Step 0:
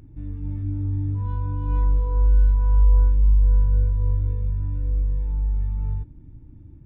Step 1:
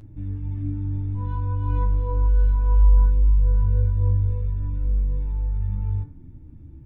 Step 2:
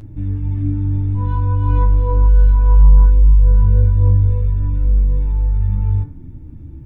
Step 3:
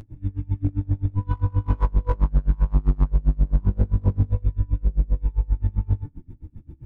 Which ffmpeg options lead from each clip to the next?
-af "flanger=delay=9.2:depth=6.5:regen=35:speed=0.51:shape=triangular,bandreject=f=73.82:t=h:w=4,bandreject=f=147.64:t=h:w=4,bandreject=f=221.46:t=h:w=4,bandreject=f=295.28:t=h:w=4,bandreject=f=369.1:t=h:w=4,bandreject=f=442.92:t=h:w=4,bandreject=f=516.74:t=h:w=4,bandreject=f=590.56:t=h:w=4,bandreject=f=664.38:t=h:w=4,bandreject=f=738.2:t=h:w=4,bandreject=f=812.02:t=h:w=4,bandreject=f=885.84:t=h:w=4,bandreject=f=959.66:t=h:w=4,bandreject=f=1.03348k:t=h:w=4,bandreject=f=1.1073k:t=h:w=4,bandreject=f=1.18112k:t=h:w=4,bandreject=f=1.25494k:t=h:w=4,bandreject=f=1.32876k:t=h:w=4,bandreject=f=1.40258k:t=h:w=4,bandreject=f=1.4764k:t=h:w=4,bandreject=f=1.55022k:t=h:w=4,bandreject=f=1.62404k:t=h:w=4,bandreject=f=1.69786k:t=h:w=4,bandreject=f=1.77168k:t=h:w=4,bandreject=f=1.8455k:t=h:w=4,bandreject=f=1.91932k:t=h:w=4,bandreject=f=1.99314k:t=h:w=4,bandreject=f=2.06696k:t=h:w=4,bandreject=f=2.14078k:t=h:w=4,bandreject=f=2.2146k:t=h:w=4,volume=6dB"
-af "acontrast=87,volume=1.5dB"
-af "volume=11.5dB,asoftclip=hard,volume=-11.5dB,aeval=exprs='val(0)*pow(10,-29*(0.5-0.5*cos(2*PI*7.6*n/s))/20)':c=same"

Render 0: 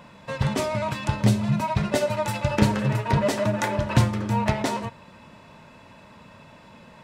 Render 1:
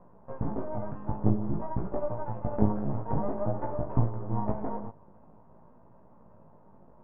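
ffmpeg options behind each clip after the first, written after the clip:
-af "aeval=exprs='max(val(0),0)':c=same,flanger=delay=16.5:depth=3.2:speed=0.51,lowpass=f=1k:w=0.5412,lowpass=f=1k:w=1.3066"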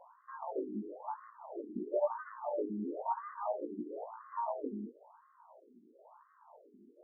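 -af "alimiter=limit=-19dB:level=0:latency=1:release=398,crystalizer=i=5:c=0,afftfilt=real='re*between(b*sr/1024,280*pow(1500/280,0.5+0.5*sin(2*PI*0.99*pts/sr))/1.41,280*pow(1500/280,0.5+0.5*sin(2*PI*0.99*pts/sr))*1.41)':imag='im*between(b*sr/1024,280*pow(1500/280,0.5+0.5*sin(2*PI*0.99*pts/sr))/1.41,280*pow(1500/280,0.5+0.5*sin(2*PI*0.99*pts/sr))*1.41)':win_size=1024:overlap=0.75,volume=3dB"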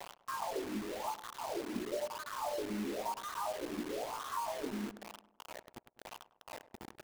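-filter_complex "[0:a]acompressor=threshold=-46dB:ratio=8,acrusher=bits=8:mix=0:aa=0.000001,asplit=2[a][b];[b]adelay=101,lowpass=f=1.3k:p=1,volume=-15dB,asplit=2[c][d];[d]adelay=101,lowpass=f=1.3k:p=1,volume=0.52,asplit=2[e][f];[f]adelay=101,lowpass=f=1.3k:p=1,volume=0.52,asplit=2[g][h];[h]adelay=101,lowpass=f=1.3k:p=1,volume=0.52,asplit=2[i][j];[j]adelay=101,lowpass=f=1.3k:p=1,volume=0.52[k];[a][c][e][g][i][k]amix=inputs=6:normalize=0,volume=10dB"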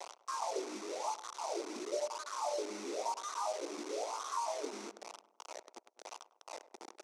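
-af "highpass=f=350:w=0.5412,highpass=f=350:w=1.3066,equalizer=f=1.7k:t=q:w=4:g=-9,equalizer=f=3k:t=q:w=4:g=-6,equalizer=f=5.9k:t=q:w=4:g=8,lowpass=f=9.2k:w=0.5412,lowpass=f=9.2k:w=1.3066,volume=1.5dB"

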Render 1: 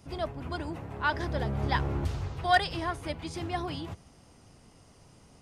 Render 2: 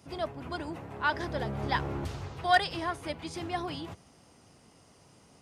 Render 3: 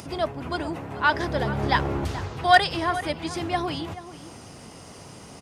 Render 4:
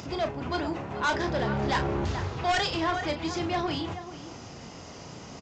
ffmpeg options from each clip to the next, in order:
-af "highpass=f=160:p=1"
-filter_complex "[0:a]acompressor=mode=upward:threshold=-42dB:ratio=2.5,asplit=2[a][b];[b]adelay=431.5,volume=-14dB,highshelf=f=4k:g=-9.71[c];[a][c]amix=inputs=2:normalize=0,volume=7.5dB"
-filter_complex "[0:a]aresample=16000,asoftclip=type=tanh:threshold=-22dB,aresample=44100,asplit=2[a][b];[b]adelay=34,volume=-8dB[c];[a][c]amix=inputs=2:normalize=0"

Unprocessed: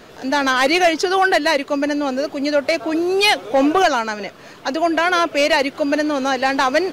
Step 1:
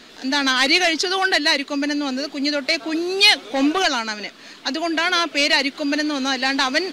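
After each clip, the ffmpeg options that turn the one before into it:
-af "equalizer=f=125:t=o:w=1:g=-11,equalizer=f=250:t=o:w=1:g=9,equalizer=f=500:t=o:w=1:g=-4,equalizer=f=2k:t=o:w=1:g=5,equalizer=f=4k:t=o:w=1:g=11,equalizer=f=8k:t=o:w=1:g=6,volume=-6.5dB"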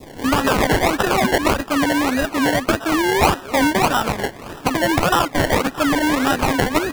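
-af "acrusher=samples=28:mix=1:aa=0.000001:lfo=1:lforange=16.8:lforate=1.7,acompressor=threshold=-24dB:ratio=3,adynamicequalizer=threshold=0.00794:dfrequency=1500:dqfactor=0.94:tfrequency=1500:tqfactor=0.94:attack=5:release=100:ratio=0.375:range=3:mode=boostabove:tftype=bell,volume=7dB"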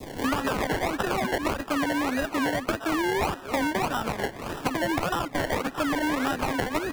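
-filter_complex "[0:a]acrossover=split=320|2900[a][b][c];[a]acompressor=threshold=-33dB:ratio=4[d];[b]acompressor=threshold=-27dB:ratio=4[e];[c]acompressor=threshold=-39dB:ratio=4[f];[d][e][f]amix=inputs=3:normalize=0"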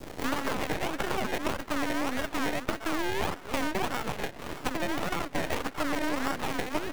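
-af "aeval=exprs='max(val(0),0)':c=same"

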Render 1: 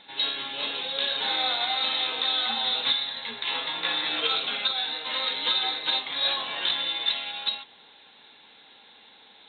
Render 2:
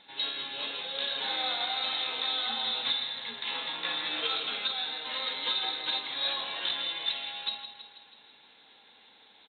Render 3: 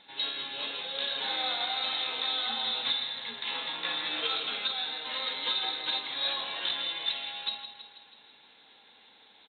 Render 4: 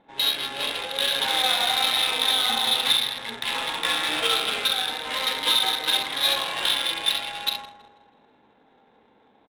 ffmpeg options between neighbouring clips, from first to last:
-af "aecho=1:1:162|324|486|648|810|972|1134:0.299|0.17|0.097|0.0553|0.0315|0.018|0.0102,volume=-5.5dB"
-af anull
-af "acrusher=bits=4:mode=log:mix=0:aa=0.000001,aecho=1:1:43|67:0.398|0.473,adynamicsmooth=sensitivity=7:basefreq=720,volume=8dB"

